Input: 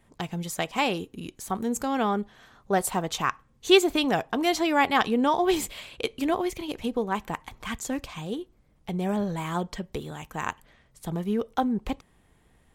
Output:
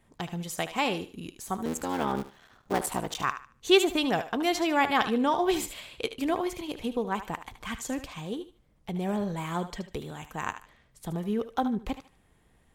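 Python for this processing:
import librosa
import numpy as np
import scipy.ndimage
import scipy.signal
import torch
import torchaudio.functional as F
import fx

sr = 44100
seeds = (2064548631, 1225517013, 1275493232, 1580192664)

y = fx.cycle_switch(x, sr, every=3, mode='muted', at=(1.65, 3.24))
y = fx.echo_thinned(y, sr, ms=75, feedback_pct=28, hz=500.0, wet_db=-10.5)
y = y * librosa.db_to_amplitude(-2.5)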